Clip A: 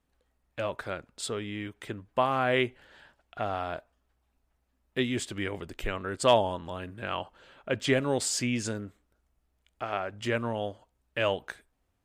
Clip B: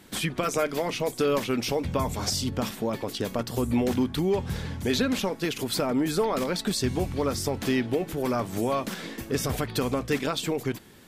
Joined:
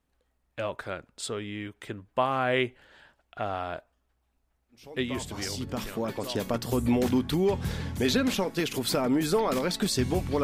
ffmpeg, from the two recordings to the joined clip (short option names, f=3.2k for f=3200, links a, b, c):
-filter_complex "[0:a]apad=whole_dur=10.43,atrim=end=10.43,atrim=end=6.51,asetpts=PTS-STARTPTS[a];[1:a]atrim=start=1.54:end=7.28,asetpts=PTS-STARTPTS[b];[a][b]acrossfade=d=1.82:c1=tri:c2=tri"